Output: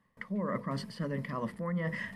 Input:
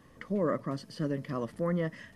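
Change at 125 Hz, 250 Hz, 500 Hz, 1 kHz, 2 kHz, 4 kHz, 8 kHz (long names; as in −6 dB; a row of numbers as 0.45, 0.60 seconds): −1.0, −2.0, −5.5, 0.0, +4.5, +1.0, −1.0 decibels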